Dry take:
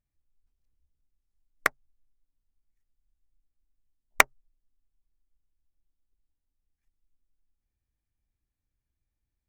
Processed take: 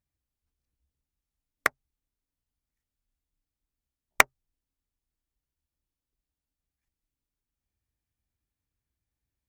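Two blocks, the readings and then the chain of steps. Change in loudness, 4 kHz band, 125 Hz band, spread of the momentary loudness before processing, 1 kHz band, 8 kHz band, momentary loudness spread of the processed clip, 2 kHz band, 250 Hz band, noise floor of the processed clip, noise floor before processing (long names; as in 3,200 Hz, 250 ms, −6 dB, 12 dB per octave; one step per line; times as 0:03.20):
0.0 dB, 0.0 dB, −0.5 dB, 7 LU, 0.0 dB, 0.0 dB, 7 LU, 0.0 dB, 0.0 dB, below −85 dBFS, below −85 dBFS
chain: high-pass filter 52 Hz 12 dB per octave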